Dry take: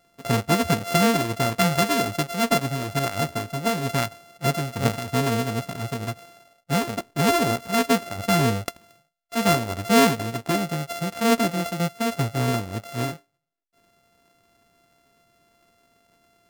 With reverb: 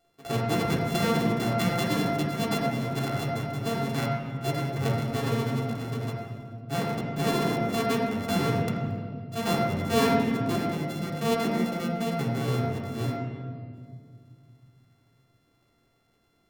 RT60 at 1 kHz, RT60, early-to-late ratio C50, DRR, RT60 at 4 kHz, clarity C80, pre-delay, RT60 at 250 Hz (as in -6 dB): 1.8 s, 2.1 s, 1.5 dB, -4.0 dB, 1.4 s, 3.5 dB, 3 ms, 3.0 s